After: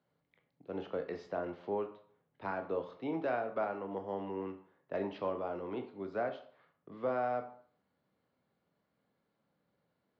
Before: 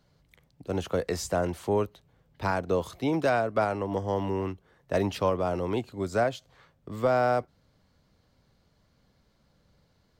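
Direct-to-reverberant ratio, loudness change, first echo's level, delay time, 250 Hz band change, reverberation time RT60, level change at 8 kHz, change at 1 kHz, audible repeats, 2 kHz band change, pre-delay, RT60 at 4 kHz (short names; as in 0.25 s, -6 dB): 6.0 dB, -9.5 dB, none, none, -10.0 dB, 0.55 s, under -30 dB, -9.0 dB, none, -10.5 dB, 17 ms, 0.40 s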